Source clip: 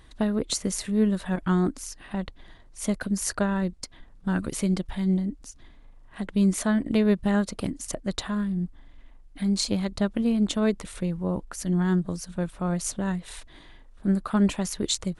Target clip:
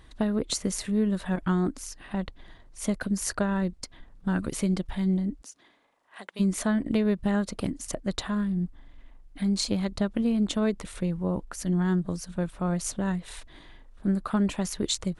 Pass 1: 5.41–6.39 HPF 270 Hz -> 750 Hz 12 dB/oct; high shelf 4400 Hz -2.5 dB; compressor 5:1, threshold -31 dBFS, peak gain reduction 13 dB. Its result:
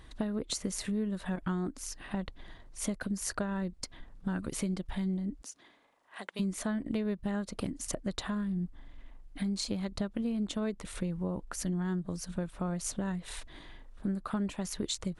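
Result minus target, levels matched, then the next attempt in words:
compressor: peak gain reduction +8.5 dB
5.41–6.39 HPF 270 Hz -> 750 Hz 12 dB/oct; high shelf 4400 Hz -2.5 dB; compressor 5:1, threshold -20.5 dBFS, peak gain reduction 4.5 dB

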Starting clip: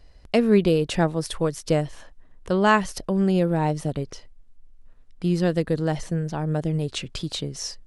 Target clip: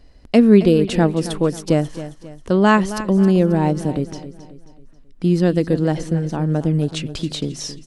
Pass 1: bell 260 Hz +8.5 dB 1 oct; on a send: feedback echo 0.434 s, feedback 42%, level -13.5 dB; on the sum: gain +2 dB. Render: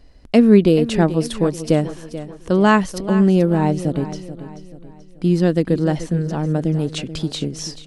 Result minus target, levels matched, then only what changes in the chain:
echo 0.165 s late
change: feedback echo 0.269 s, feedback 42%, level -13.5 dB

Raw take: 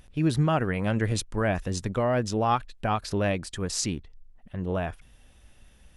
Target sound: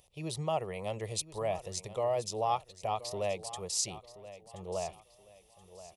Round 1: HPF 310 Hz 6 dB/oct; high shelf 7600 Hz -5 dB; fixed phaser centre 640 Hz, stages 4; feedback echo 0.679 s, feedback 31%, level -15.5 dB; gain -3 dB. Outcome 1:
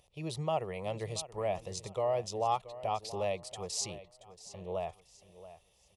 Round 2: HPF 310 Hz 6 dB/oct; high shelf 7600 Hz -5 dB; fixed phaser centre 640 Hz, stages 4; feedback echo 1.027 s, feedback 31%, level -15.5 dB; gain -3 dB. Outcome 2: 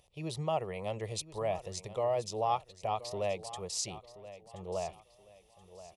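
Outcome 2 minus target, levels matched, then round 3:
8000 Hz band -3.5 dB
HPF 310 Hz 6 dB/oct; high shelf 7600 Hz +4 dB; fixed phaser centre 640 Hz, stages 4; feedback echo 1.027 s, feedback 31%, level -15.5 dB; gain -3 dB

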